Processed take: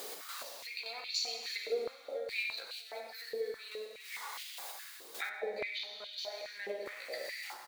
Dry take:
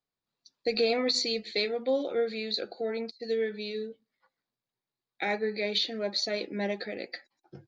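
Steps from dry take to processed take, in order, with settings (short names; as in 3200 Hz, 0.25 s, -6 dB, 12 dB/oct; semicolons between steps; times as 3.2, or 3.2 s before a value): zero-crossing step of -43.5 dBFS; step gate "x.x...x.xx" 105 bpm -12 dB; plate-style reverb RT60 1.4 s, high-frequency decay 0.9×, DRR 0.5 dB; compressor 3:1, threshold -49 dBFS, peak gain reduction 20 dB; high shelf 4200 Hz +9 dB; feedback echo 96 ms, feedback 53%, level -11 dB; hum 60 Hz, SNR 20 dB; 5.29–6.18 tilt -3 dB/oct; stepped high-pass 4.8 Hz 430–2900 Hz; gain +2 dB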